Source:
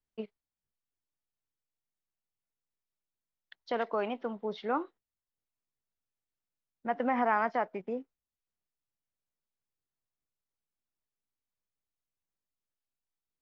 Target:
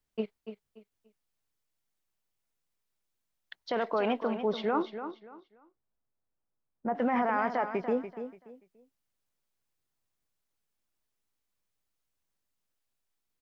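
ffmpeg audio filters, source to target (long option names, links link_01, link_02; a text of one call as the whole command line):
ffmpeg -i in.wav -filter_complex "[0:a]asettb=1/sr,asplit=3[link_01][link_02][link_03];[link_01]atrim=end=4.824[link_04];[link_02]atrim=start=4.82:end=6.95,asetpts=PTS-STARTPTS,afade=type=in:duration=0.004:curve=qsin,afade=type=out:start_time=2.126:duration=0.004:curve=qsin,lowpass=1100[link_05];[link_03]atrim=start=6.946[link_06];[link_04][link_05]acrossfade=duration=0.004:curve1=hsin:curve2=qsin[link_07];[link_07][link_06]acrossfade=duration=0.004:curve1=qsin:curve2=hsin,alimiter=level_in=2dB:limit=-24dB:level=0:latency=1:release=13,volume=-2dB,aecho=1:1:289|578|867:0.316|0.0822|0.0214,volume=6.5dB" out.wav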